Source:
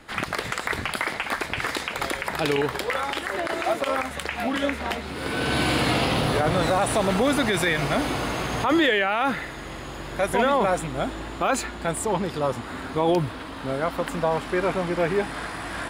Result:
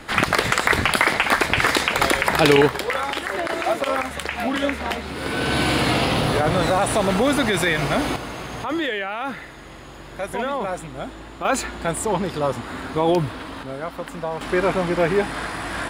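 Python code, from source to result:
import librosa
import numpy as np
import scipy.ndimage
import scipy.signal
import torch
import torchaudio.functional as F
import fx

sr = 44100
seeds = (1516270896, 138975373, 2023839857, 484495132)

y = fx.gain(x, sr, db=fx.steps((0.0, 9.0), (2.68, 2.5), (8.16, -4.5), (11.45, 2.5), (13.63, -4.0), (14.41, 4.0)))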